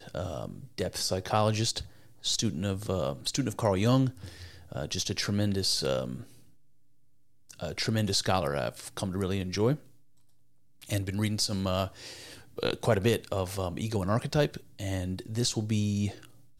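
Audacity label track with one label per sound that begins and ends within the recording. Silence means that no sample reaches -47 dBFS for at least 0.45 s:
7.500000	9.910000	sound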